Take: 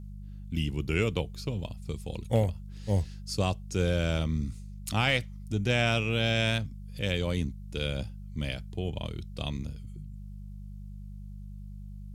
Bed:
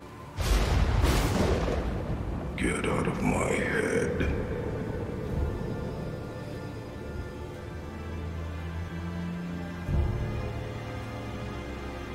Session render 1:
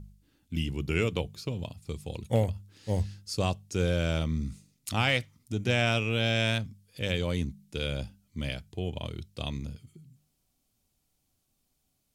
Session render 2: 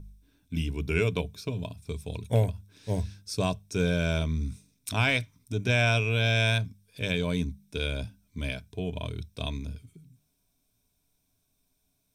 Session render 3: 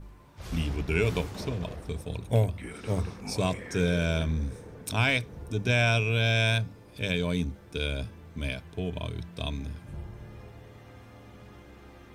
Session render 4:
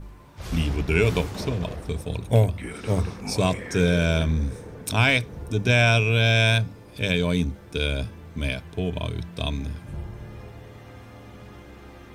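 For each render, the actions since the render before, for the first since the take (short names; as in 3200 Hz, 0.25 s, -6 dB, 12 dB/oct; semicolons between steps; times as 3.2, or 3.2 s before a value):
de-hum 50 Hz, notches 4
ripple EQ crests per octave 1.6, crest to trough 9 dB
add bed -13 dB
gain +5.5 dB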